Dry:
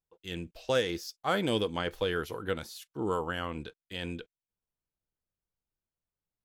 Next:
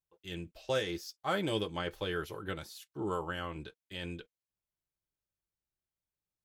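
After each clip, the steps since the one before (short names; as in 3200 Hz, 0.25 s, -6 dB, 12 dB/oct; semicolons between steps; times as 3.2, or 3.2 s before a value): notch comb 240 Hz; gain -2.5 dB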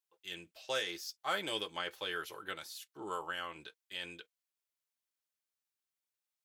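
HPF 1300 Hz 6 dB/oct; gain +2.5 dB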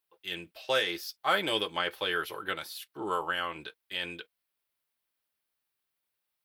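bell 6800 Hz -11 dB 0.72 oct; gain +8.5 dB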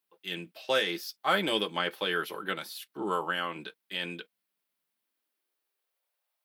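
high-pass sweep 190 Hz -> 620 Hz, 4.89–6.14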